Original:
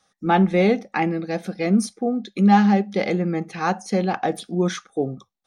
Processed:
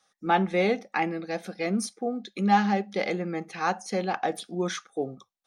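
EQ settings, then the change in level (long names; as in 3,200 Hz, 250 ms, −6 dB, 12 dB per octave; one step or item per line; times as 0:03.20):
low-shelf EQ 270 Hz −11.5 dB
−2.5 dB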